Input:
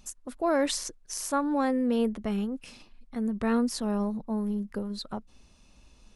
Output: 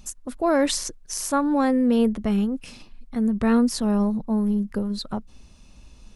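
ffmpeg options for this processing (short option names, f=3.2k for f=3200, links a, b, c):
-af "bass=f=250:g=5,treble=f=4k:g=1,volume=4.5dB"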